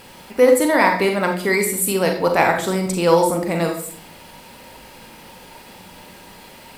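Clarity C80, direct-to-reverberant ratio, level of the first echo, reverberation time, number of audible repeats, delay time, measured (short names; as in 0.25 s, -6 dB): 11.0 dB, 3.0 dB, none, 0.55 s, none, none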